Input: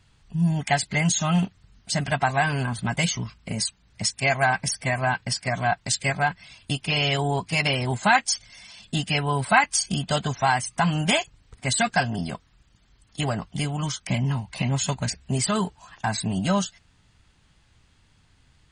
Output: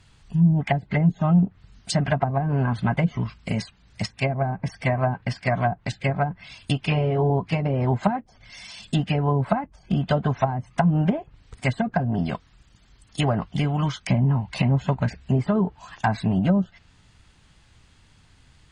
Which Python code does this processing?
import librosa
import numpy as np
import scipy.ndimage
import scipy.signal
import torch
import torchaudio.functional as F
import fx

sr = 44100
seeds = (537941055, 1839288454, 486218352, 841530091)

y = fx.env_lowpass_down(x, sr, base_hz=380.0, full_db=-18.0)
y = fx.doubler(y, sr, ms=19.0, db=-4.0, at=(6.89, 7.3))
y = y * librosa.db_to_amplitude(4.5)